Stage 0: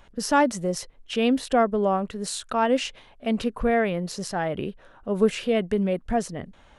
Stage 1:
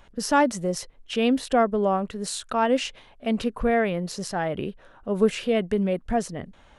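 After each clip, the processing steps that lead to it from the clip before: no audible change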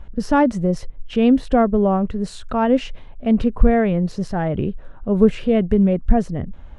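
RIAA curve playback; trim +1.5 dB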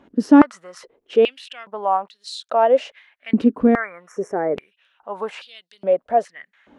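spectral replace 3.77–4.73 s, 2.4–5.4 kHz after; step-sequenced high-pass 2.4 Hz 280–4000 Hz; trim -2.5 dB

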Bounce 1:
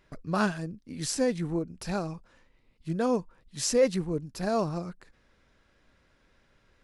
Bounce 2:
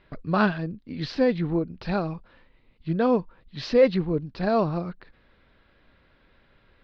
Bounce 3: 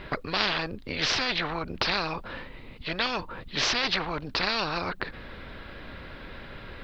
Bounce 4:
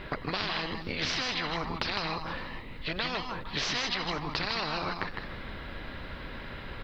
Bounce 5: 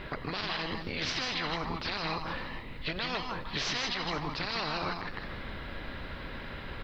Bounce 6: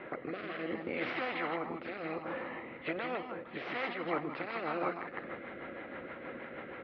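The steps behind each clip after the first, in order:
steep low-pass 4.4 kHz 48 dB/octave; trim +5 dB
spectrum-flattening compressor 10:1
compression, threshold -29 dBFS, peak gain reduction 8 dB; multi-tap echo 99/157/158/464 ms -19/-6.5/-8/-17.5 dB
peak limiter -22.5 dBFS, peak gain reduction 11 dB; on a send at -17 dB: reverberation RT60 1.7 s, pre-delay 7 ms
rotary cabinet horn 0.65 Hz, later 6.3 Hz, at 3.54 s; cabinet simulation 180–2700 Hz, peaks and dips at 240 Hz +4 dB, 340 Hz +9 dB, 520 Hz +10 dB, 740 Hz +8 dB, 1.3 kHz +7 dB, 2.1 kHz +6 dB; trim -4.5 dB

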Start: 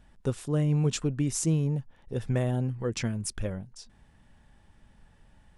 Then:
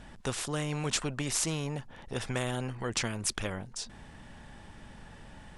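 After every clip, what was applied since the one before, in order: low-pass 9.6 kHz 12 dB/octave; spectrum-flattening compressor 2:1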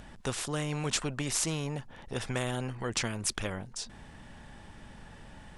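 upward compressor, threshold -49 dBFS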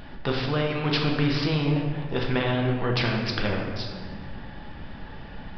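reverberation RT60 1.9 s, pre-delay 5 ms, DRR 0 dB; resampled via 11.025 kHz; trim +5.5 dB

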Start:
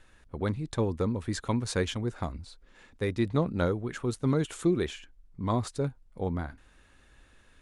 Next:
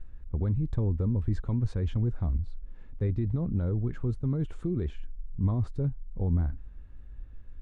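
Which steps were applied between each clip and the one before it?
tilt EQ -1.5 dB/octave; peak limiter -21 dBFS, peak gain reduction 10.5 dB; RIAA curve playback; trim -8 dB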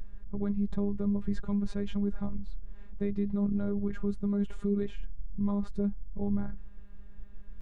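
in parallel at -3 dB: peak limiter -26.5 dBFS, peak gain reduction 9.5 dB; on the sum: robot voice 202 Hz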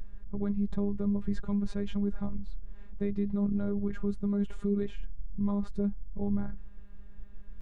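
no audible change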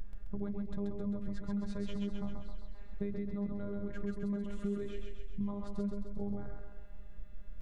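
compression, threshold -30 dBFS, peak gain reduction 7.5 dB; on a send: thinning echo 132 ms, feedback 58%, high-pass 220 Hz, level -3 dB; on the sum: trim -1 dB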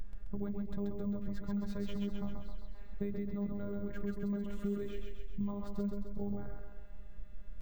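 careless resampling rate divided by 2×, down none, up hold

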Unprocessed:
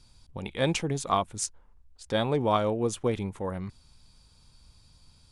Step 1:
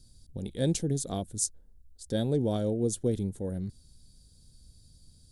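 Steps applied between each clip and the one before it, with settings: FFT filter 260 Hz 0 dB, 490 Hz -4 dB, 710 Hz -11 dB, 1.1 kHz -27 dB, 1.6 kHz -12 dB, 2.4 kHz -21 dB, 3.8 kHz -5 dB, 5.5 kHz -3 dB, 11 kHz +5 dB; trim +1.5 dB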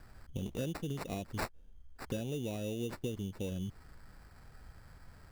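compression 12:1, threshold -35 dBFS, peak gain reduction 14 dB; sample-rate reducer 3.2 kHz, jitter 0%; trim +1.5 dB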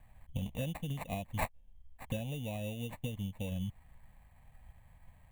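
static phaser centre 1.4 kHz, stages 6; upward expansion 1.5:1, over -54 dBFS; trim +6 dB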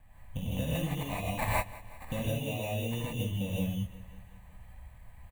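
feedback delay 183 ms, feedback 60%, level -18.5 dB; gated-style reverb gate 190 ms rising, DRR -6.5 dB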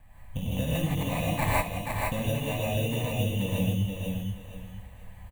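feedback delay 478 ms, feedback 26%, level -4 dB; trim +3.5 dB

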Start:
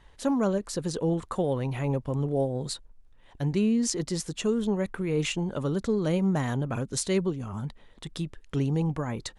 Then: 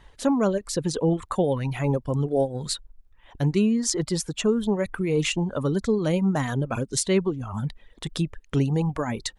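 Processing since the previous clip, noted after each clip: reverb removal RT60 1 s; in parallel at -2 dB: gain riding within 4 dB 0.5 s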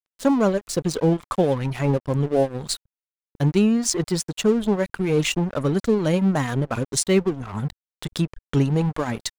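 crossover distortion -38 dBFS; trim +4 dB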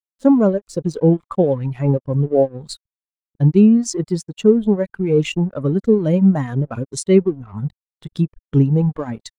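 spectral contrast expander 1.5:1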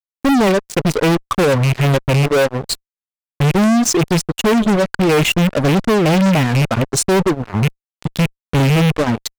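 rattle on loud lows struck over -22 dBFS, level -20 dBFS; fuzz box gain 28 dB, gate -34 dBFS; trim +2 dB

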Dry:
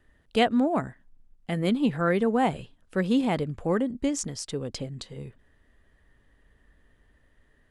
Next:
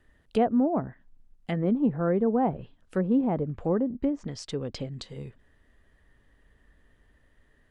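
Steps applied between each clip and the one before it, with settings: low-pass that closes with the level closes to 850 Hz, closed at -23 dBFS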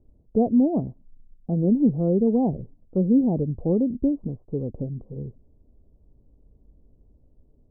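Gaussian low-pass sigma 15 samples; trim +6.5 dB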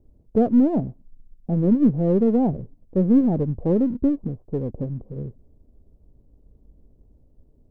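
partial rectifier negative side -3 dB; trim +3.5 dB

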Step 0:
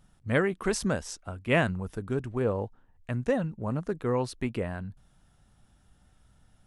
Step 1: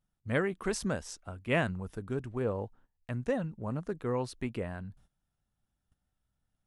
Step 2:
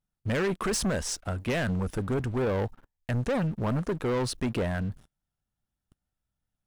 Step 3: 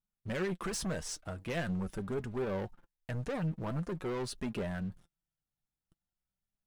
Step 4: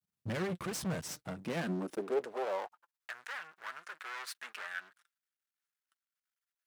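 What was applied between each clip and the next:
gate -54 dBFS, range -16 dB; trim -4.5 dB
peak limiter -24.5 dBFS, peak gain reduction 9.5 dB; waveshaping leveller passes 3; trim +2 dB
flange 0.45 Hz, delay 4.7 ms, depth 2 ms, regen +42%; trim -4 dB
half-wave rectifier; high-pass sweep 110 Hz -> 1.5 kHz, 1.08–3.18 s; trim +2.5 dB

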